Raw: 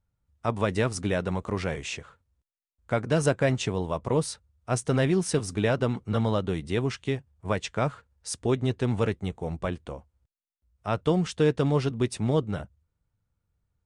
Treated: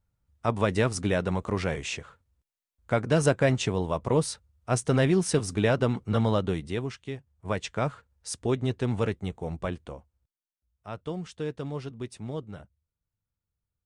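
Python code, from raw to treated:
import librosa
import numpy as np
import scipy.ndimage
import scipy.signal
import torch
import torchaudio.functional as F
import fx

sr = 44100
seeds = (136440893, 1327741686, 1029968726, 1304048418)

y = fx.gain(x, sr, db=fx.line((6.48, 1.0), (7.04, -8.5), (7.57, -1.5), (9.75, -1.5), (10.91, -10.5)))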